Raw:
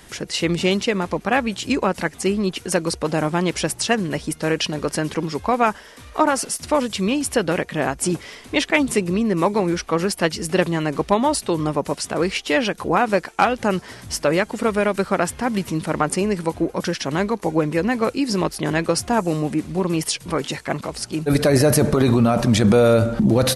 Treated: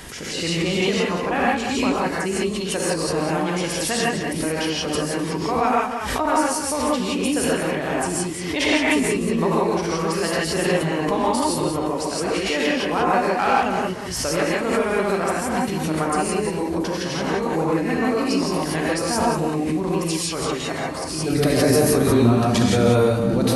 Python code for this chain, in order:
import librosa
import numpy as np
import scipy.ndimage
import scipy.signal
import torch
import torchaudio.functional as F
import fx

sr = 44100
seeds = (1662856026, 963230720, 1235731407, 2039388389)

y = x + 10.0 ** (-8.5 / 20.0) * np.pad(x, (int(188 * sr / 1000.0), 0))[:len(x)]
y = fx.rev_gated(y, sr, seeds[0], gate_ms=190, shape='rising', drr_db=-5.5)
y = fx.pre_swell(y, sr, db_per_s=37.0)
y = y * librosa.db_to_amplitude(-8.0)